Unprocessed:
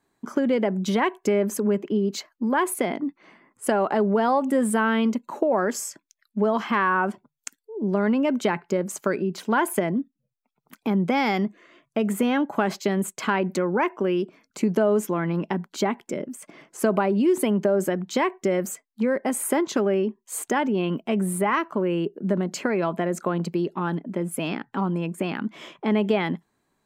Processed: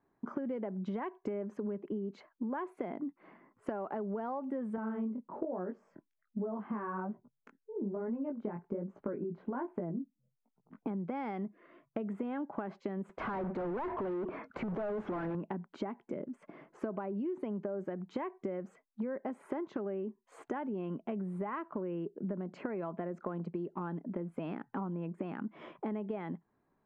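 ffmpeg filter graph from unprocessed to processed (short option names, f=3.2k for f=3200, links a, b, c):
-filter_complex "[0:a]asettb=1/sr,asplit=3[a][b][c];[a]atrim=end=4.764[d];[b]atrim=start=4.76:end=10.87,asetpts=PTS-STARTPTS,afade=t=in:d=0.004:c=qsin,afade=t=out:st=6.106:d=0.004:c=qsin,lowpass=f=1.1k:p=1,lowshelf=f=460:g=7,flanger=delay=16.5:depth=7.3:speed=1.2[e];[c]atrim=start=10.866[f];[d][e]acrossfade=d=0.004:c1=hsin:c2=qsin[g];[g][f]acrossfade=d=0.004:c1=qsin:c2=hsin,asettb=1/sr,asplit=3[h][i][j];[h]atrim=end=13.094[k];[i]atrim=start=13.09:end=15.35,asetpts=PTS-STARTPTS,afade=t=in:d=0.004:c=qsin,afade=t=out:st=2.256:d=0.004:c=qsin,asoftclip=type=hard:threshold=-25.5dB,asplit=2[l][m];[m]highpass=f=720:p=1,volume=35dB,asoftclip=type=tanh:threshold=-19dB[n];[l][n]amix=inputs=2:normalize=0,lowpass=f=1.3k:p=1,volume=-6dB[o];[j]atrim=start=15.346[p];[k][o]acrossfade=d=0.004:c1=hsin:c2=qsin[q];[q][p]acrossfade=d=0.004:c1=qsin:c2=hsin,lowpass=1.4k,acompressor=threshold=-32dB:ratio=6,volume=-3dB"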